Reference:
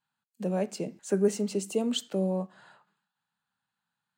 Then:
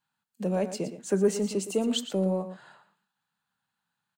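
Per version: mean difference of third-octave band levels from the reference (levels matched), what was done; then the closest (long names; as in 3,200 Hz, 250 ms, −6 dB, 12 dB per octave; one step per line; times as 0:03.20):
2.5 dB: in parallel at −11.5 dB: soft clipping −26 dBFS, distortion −10 dB
on the sum: single-tap delay 116 ms −11.5 dB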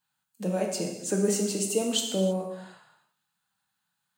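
7.5 dB: high-shelf EQ 4,400 Hz +10 dB
reverb whose tail is shaped and stops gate 350 ms falling, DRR 1 dB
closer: first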